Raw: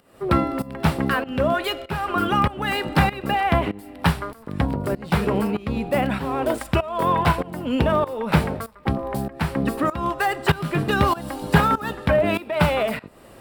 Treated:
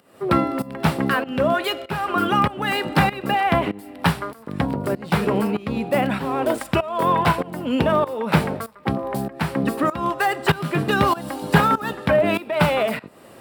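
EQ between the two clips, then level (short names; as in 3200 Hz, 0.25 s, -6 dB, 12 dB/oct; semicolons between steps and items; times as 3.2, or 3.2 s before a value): HPF 120 Hz 12 dB/oct; +1.5 dB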